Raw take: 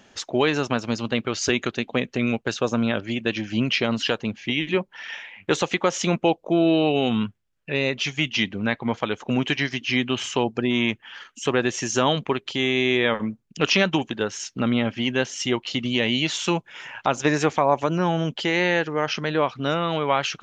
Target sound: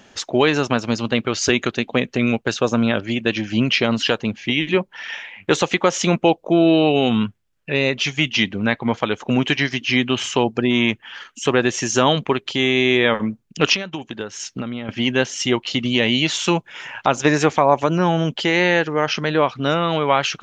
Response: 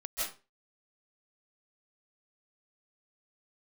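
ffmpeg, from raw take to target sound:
-filter_complex "[0:a]asettb=1/sr,asplit=3[s0][s1][s2];[s0]atrim=end=13.744[s3];[s1]atrim=start=13.74:end=14.89,asetpts=PTS-STARTPTS,afade=t=in:d=0.004:c=qsin,afade=t=out:st=1.146:d=0.004:c=qsin,acompressor=threshold=0.0355:ratio=8[s4];[s2]atrim=start=14.886[s5];[s3][s4]acrossfade=d=0.004:c1=hsin:c2=qsin[s6];[s6][s5]acrossfade=d=0.004:c1=qsin:c2=hsin,volume=1.68"

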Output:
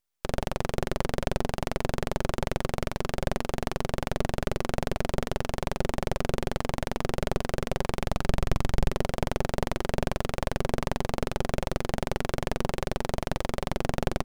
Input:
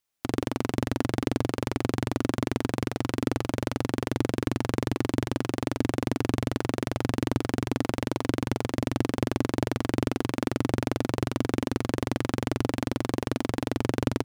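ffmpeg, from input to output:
-filter_complex "[0:a]aeval=exprs='abs(val(0))':c=same,asettb=1/sr,asplit=3[s0][s1][s2];[s0]atrim=end=7.844[s3];[s1]atrim=start=7.84:end=8.91,asetpts=PTS-STARTPTS,afade=t=in:d=0.004:c=qsin,afade=t=out:st=1.066:d=0.004:c=qsin,asubboost=boost=6:cutoff=210[s4];[s2]atrim=start=8.906[s5];[s3][s4]acrossfade=d=0.004:c1=hsin:c2=qsin[s6];[s6][s5]acrossfade=d=0.004:c1=qsin:c2=hsin"

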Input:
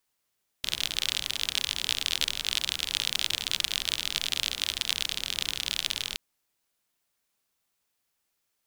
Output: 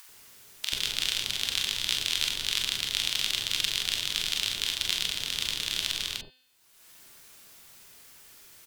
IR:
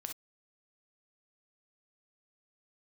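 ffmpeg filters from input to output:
-filter_complex "[0:a]bandreject=f=256:t=h:w=4,bandreject=f=512:t=h:w=4,bandreject=f=768:t=h:w=4,bandreject=f=1024:t=h:w=4,bandreject=f=1280:t=h:w=4,bandreject=f=1536:t=h:w=4,bandreject=f=1792:t=h:w=4,bandreject=f=2048:t=h:w=4,bandreject=f=2304:t=h:w=4,bandreject=f=2560:t=h:w=4,bandreject=f=2816:t=h:w=4,bandreject=f=3072:t=h:w=4,bandreject=f=3328:t=h:w=4,bandreject=f=3584:t=h:w=4,bandreject=f=3840:t=h:w=4,bandreject=f=4096:t=h:w=4,bandreject=f=4352:t=h:w=4,bandreject=f=4608:t=h:w=4,bandreject=f=4864:t=h:w=4,acompressor=mode=upward:threshold=0.0251:ratio=2.5,acrossover=split=760[s0][s1];[s0]adelay=90[s2];[s2][s1]amix=inputs=2:normalize=0[s3];[1:a]atrim=start_sample=2205,asetrate=61740,aresample=44100[s4];[s3][s4]afir=irnorm=-1:irlink=0,volume=2"

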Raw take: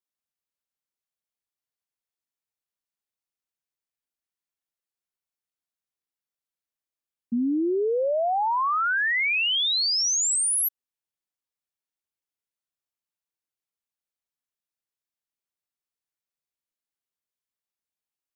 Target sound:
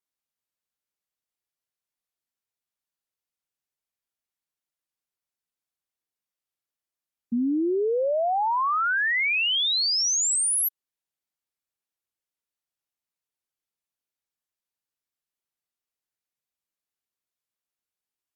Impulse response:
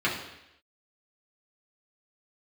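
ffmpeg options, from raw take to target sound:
-ar 48000 -c:a libopus -b:a 128k

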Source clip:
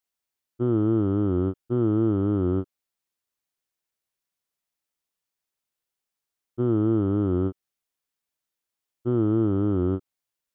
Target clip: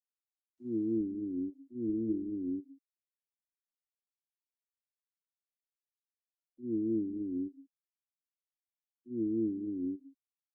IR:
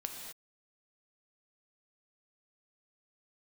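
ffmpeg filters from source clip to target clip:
-filter_complex "[0:a]agate=range=0.0794:threshold=0.1:ratio=16:detection=peak,asplit=3[s0][s1][s2];[s0]bandpass=f=270:t=q:w=8,volume=1[s3];[s1]bandpass=f=2290:t=q:w=8,volume=0.501[s4];[s2]bandpass=f=3010:t=q:w=8,volume=0.355[s5];[s3][s4][s5]amix=inputs=3:normalize=0,asplit=2[s6][s7];[1:a]atrim=start_sample=2205[s8];[s7][s8]afir=irnorm=-1:irlink=0,volume=0.211[s9];[s6][s9]amix=inputs=2:normalize=0,acontrast=83,asplit=3[s10][s11][s12];[s10]afade=t=out:st=1.18:d=0.02[s13];[s11]bandreject=f=337.9:t=h:w=4,bandreject=f=675.8:t=h:w=4,bandreject=f=1013.7:t=h:w=4,bandreject=f=1351.6:t=h:w=4,bandreject=f=1689.5:t=h:w=4,bandreject=f=2027.4:t=h:w=4,bandreject=f=2365.3:t=h:w=4,bandreject=f=2703.2:t=h:w=4,bandreject=f=3041.1:t=h:w=4,bandreject=f=3379:t=h:w=4,bandreject=f=3716.9:t=h:w=4,bandreject=f=4054.8:t=h:w=4,bandreject=f=4392.7:t=h:w=4,bandreject=f=4730.6:t=h:w=4,bandreject=f=5068.5:t=h:w=4,bandreject=f=5406.4:t=h:w=4,bandreject=f=5744.3:t=h:w=4,bandreject=f=6082.2:t=h:w=4,bandreject=f=6420.1:t=h:w=4,bandreject=f=6758:t=h:w=4,bandreject=f=7095.9:t=h:w=4,bandreject=f=7433.8:t=h:w=4,bandreject=f=7771.7:t=h:w=4,bandreject=f=8109.6:t=h:w=4,bandreject=f=8447.5:t=h:w=4,bandreject=f=8785.4:t=h:w=4,bandreject=f=9123.3:t=h:w=4,bandreject=f=9461.2:t=h:w=4,bandreject=f=9799.1:t=h:w=4,bandreject=f=10137:t=h:w=4,bandreject=f=10474.9:t=h:w=4,bandreject=f=10812.8:t=h:w=4,afade=t=in:st=1.18:d=0.02,afade=t=out:st=2.51:d=0.02[s14];[s12]afade=t=in:st=2.51:d=0.02[s15];[s13][s14][s15]amix=inputs=3:normalize=0,afftfilt=real='re*gte(hypot(re,im),0.00708)':imag='im*gte(hypot(re,im),0.00708)':win_size=1024:overlap=0.75,volume=0.794" -ar 48000 -c:a libopus -b:a 32k

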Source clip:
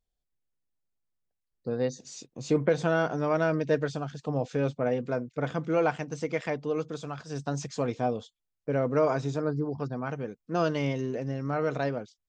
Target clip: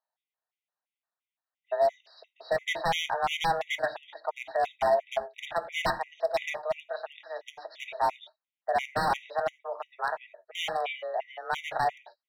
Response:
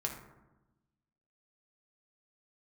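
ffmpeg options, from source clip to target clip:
-filter_complex "[0:a]highpass=f=450:t=q:w=0.5412,highpass=f=450:t=q:w=1.307,lowpass=f=3500:t=q:w=0.5176,lowpass=f=3500:t=q:w=0.7071,lowpass=f=3500:t=q:w=1.932,afreqshift=170,aeval=exprs='0.0531*(abs(mod(val(0)/0.0531+3,4)-2)-1)':c=same,asplit=2[s0][s1];[1:a]atrim=start_sample=2205,afade=t=out:st=0.22:d=0.01,atrim=end_sample=10143,atrim=end_sample=4410[s2];[s1][s2]afir=irnorm=-1:irlink=0,volume=0.631[s3];[s0][s3]amix=inputs=2:normalize=0,afftfilt=real='re*gt(sin(2*PI*2.9*pts/sr)*(1-2*mod(floor(b*sr/1024/1900),2)),0)':imag='im*gt(sin(2*PI*2.9*pts/sr)*(1-2*mod(floor(b*sr/1024/1900),2)),0)':win_size=1024:overlap=0.75,volume=1.33"

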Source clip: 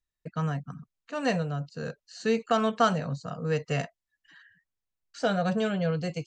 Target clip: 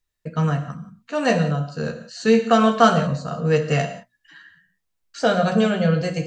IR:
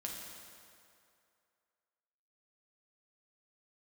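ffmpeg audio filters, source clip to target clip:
-filter_complex "[0:a]bandreject=f=60:t=h:w=6,bandreject=f=120:t=h:w=6,bandreject=f=180:t=h:w=6,bandreject=f=240:t=h:w=6,asplit=2[s0][s1];[1:a]atrim=start_sample=2205,afade=t=out:st=0.22:d=0.01,atrim=end_sample=10143,adelay=13[s2];[s1][s2]afir=irnorm=-1:irlink=0,volume=0.75[s3];[s0][s3]amix=inputs=2:normalize=0,volume=2.24"

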